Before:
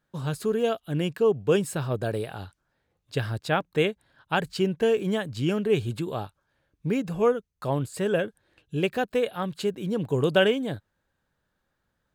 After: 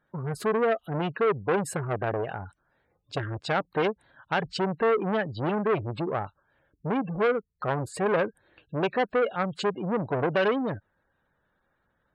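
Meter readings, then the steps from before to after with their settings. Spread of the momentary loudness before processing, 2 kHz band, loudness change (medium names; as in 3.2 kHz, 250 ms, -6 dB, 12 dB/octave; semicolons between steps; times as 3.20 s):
11 LU, +0.5 dB, -1.0 dB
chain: treble shelf 3.7 kHz -8.5 dB; peak limiter -17.5 dBFS, peak gain reduction 7.5 dB; bass shelf 330 Hz -6.5 dB; spectral gate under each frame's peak -20 dB strong; transformer saturation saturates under 1.1 kHz; trim +7 dB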